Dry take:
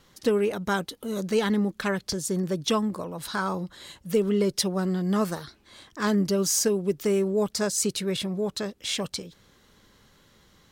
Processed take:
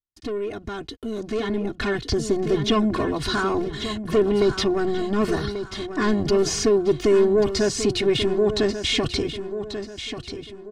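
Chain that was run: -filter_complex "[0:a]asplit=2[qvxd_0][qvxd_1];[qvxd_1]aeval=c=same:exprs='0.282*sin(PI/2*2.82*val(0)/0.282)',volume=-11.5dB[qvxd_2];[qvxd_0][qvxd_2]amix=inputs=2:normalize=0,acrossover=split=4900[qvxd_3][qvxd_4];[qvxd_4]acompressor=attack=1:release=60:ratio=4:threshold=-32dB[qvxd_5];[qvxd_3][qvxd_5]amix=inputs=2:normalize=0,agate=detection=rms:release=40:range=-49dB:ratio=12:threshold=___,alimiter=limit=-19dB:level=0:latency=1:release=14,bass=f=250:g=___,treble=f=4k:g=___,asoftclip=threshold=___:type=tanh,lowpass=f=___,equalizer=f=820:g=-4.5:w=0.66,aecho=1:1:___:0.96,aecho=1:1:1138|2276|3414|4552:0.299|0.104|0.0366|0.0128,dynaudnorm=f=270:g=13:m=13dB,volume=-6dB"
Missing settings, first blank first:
-44dB, 9, -7, -15dB, 7.6k, 2.8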